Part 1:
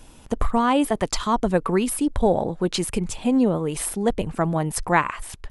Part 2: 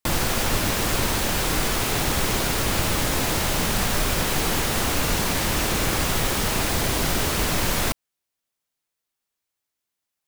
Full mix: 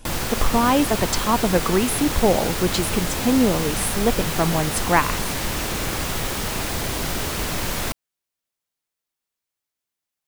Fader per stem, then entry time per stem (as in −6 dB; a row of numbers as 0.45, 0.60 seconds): +1.0, −2.5 decibels; 0.00, 0.00 seconds